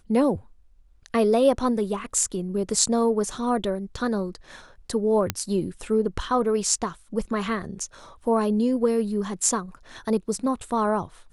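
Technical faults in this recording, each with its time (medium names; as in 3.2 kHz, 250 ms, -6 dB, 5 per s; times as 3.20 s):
5.30 s: pop -7 dBFS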